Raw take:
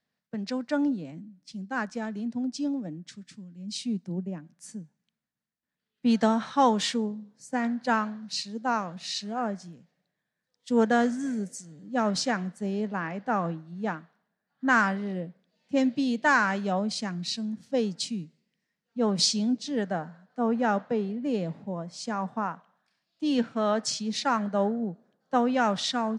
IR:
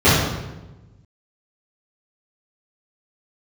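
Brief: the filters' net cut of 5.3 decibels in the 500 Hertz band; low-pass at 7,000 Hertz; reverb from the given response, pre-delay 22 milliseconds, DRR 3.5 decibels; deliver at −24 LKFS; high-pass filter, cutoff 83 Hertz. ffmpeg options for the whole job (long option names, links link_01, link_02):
-filter_complex "[0:a]highpass=83,lowpass=7000,equalizer=frequency=500:width_type=o:gain=-6.5,asplit=2[link_01][link_02];[1:a]atrim=start_sample=2205,adelay=22[link_03];[link_02][link_03]afir=irnorm=-1:irlink=0,volume=-30dB[link_04];[link_01][link_04]amix=inputs=2:normalize=0,volume=3dB"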